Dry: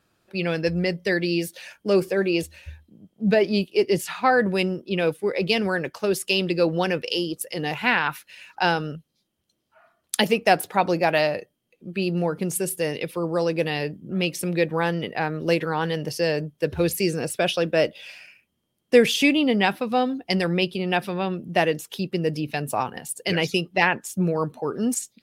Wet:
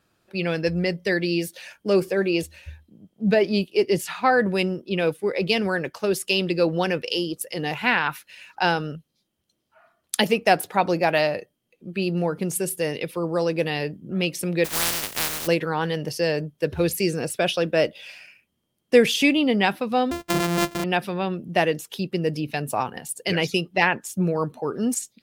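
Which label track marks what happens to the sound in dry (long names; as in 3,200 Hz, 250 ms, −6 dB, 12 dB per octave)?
14.640000	15.460000	compressing power law on the bin magnitudes exponent 0.12
20.110000	20.840000	samples sorted by size in blocks of 128 samples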